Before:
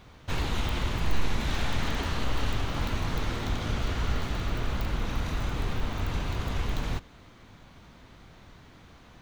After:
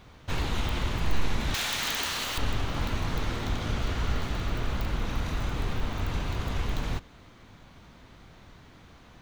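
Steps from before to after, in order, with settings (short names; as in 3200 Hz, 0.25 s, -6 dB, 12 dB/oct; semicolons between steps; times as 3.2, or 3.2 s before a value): 1.54–2.38 tilt +4 dB/oct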